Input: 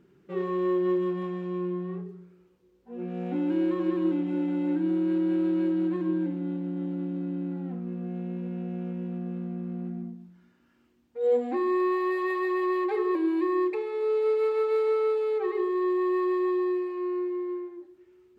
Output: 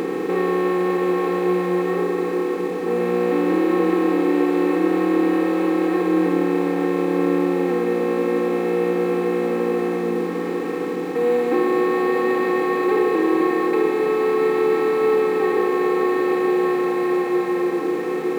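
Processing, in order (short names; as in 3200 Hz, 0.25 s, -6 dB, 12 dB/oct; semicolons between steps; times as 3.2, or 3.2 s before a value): per-bin compression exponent 0.2; multi-head echo 0.303 s, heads second and third, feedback 43%, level -12 dB; in parallel at -11 dB: bit-crush 6-bit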